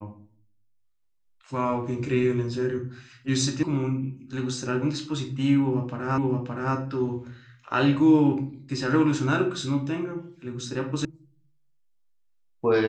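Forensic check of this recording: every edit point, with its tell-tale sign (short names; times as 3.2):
3.63 sound cut off
6.18 repeat of the last 0.57 s
11.05 sound cut off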